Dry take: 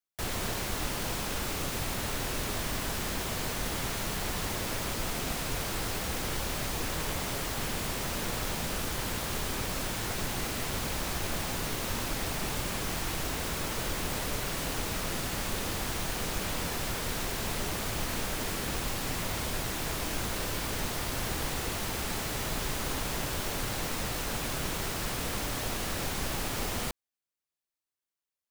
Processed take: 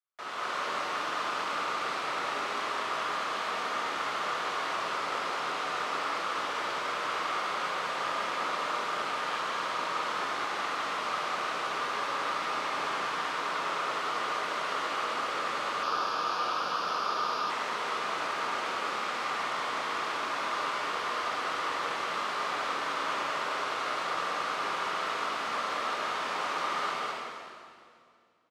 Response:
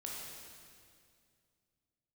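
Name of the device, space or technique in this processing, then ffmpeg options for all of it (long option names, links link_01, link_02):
station announcement: -filter_complex "[0:a]highpass=500,lowpass=3600,equalizer=frequency=1200:width_type=o:width=0.48:gain=10.5,aecho=1:1:69.97|204.1:0.355|1[link_01];[1:a]atrim=start_sample=2205[link_02];[link_01][link_02]afir=irnorm=-1:irlink=0,asettb=1/sr,asplit=3[link_03][link_04][link_05];[link_03]atrim=end=15.834[link_06];[link_04]atrim=start=15.83:end=17.5,asetpts=PTS-STARTPTS,afade=type=in:duration=0.004:curve=qsin,afade=type=out:start_time=1.666:duration=0.004:curve=qsin,equalizer=frequency=1250:width_type=o:width=0.33:gain=5,equalizer=frequency=2000:width_type=o:width=0.33:gain=-12,equalizer=frequency=5000:width_type=o:width=0.33:gain=8,equalizer=frequency=8000:width_type=o:width=0.33:gain=-11[link_07];[link_05]atrim=start=17.496[link_08];[link_06][link_07]acrossfade=duration=0.004:curve1=hsin:curve2=qsin[link_09];[link_09][link_08]acrossfade=duration=0.004:curve1=qsin:curve2=hsin"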